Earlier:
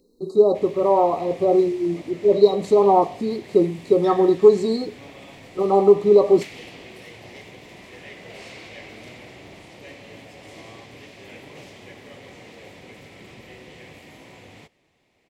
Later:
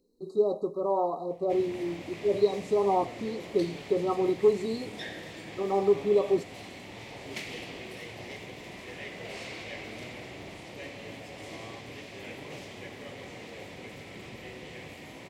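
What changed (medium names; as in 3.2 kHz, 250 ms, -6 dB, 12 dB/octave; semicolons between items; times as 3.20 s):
speech -10.0 dB; background: entry +0.95 s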